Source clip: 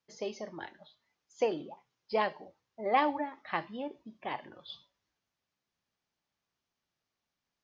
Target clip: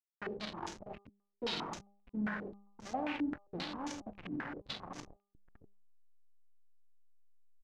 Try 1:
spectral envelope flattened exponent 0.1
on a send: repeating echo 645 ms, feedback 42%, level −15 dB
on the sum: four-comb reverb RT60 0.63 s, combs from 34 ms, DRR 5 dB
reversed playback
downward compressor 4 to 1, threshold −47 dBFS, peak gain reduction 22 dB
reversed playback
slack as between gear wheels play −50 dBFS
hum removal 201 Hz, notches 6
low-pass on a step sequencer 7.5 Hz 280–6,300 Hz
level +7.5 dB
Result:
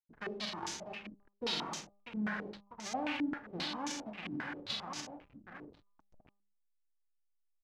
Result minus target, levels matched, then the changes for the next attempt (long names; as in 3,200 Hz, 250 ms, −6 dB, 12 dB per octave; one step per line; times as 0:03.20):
slack as between gear wheels: distortion −9 dB
change: slack as between gear wheels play −40 dBFS